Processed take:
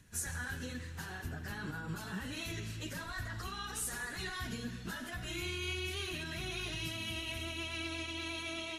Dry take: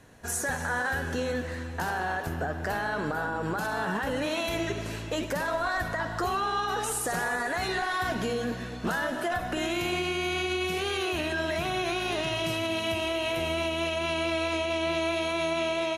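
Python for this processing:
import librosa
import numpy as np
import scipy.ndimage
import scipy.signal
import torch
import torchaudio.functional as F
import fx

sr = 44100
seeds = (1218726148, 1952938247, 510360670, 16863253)

y = fx.stretch_vocoder_free(x, sr, factor=0.55)
y = fx.tone_stack(y, sr, knobs='6-0-2')
y = y * 10.0 ** (13.0 / 20.0)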